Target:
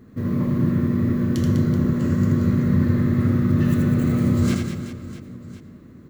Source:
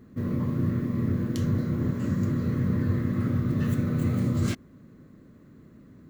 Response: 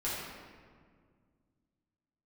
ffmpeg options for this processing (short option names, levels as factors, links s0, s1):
-filter_complex "[0:a]aecho=1:1:80|200|380|650|1055:0.631|0.398|0.251|0.158|0.1,asplit=2[s0][s1];[1:a]atrim=start_sample=2205,adelay=91[s2];[s1][s2]afir=irnorm=-1:irlink=0,volume=0.15[s3];[s0][s3]amix=inputs=2:normalize=0,volume=1.5"